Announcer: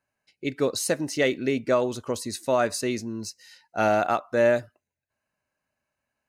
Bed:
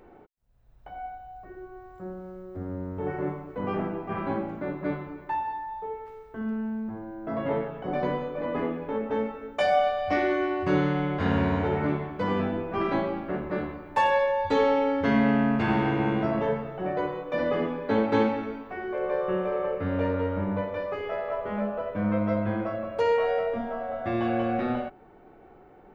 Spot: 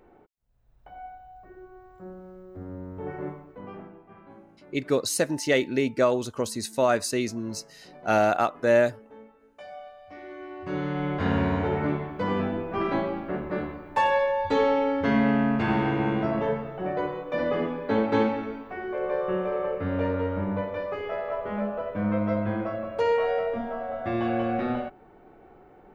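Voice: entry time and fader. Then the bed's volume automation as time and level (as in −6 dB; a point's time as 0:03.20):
4.30 s, +0.5 dB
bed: 0:03.26 −4 dB
0:04.21 −20 dB
0:10.13 −20 dB
0:11.09 0 dB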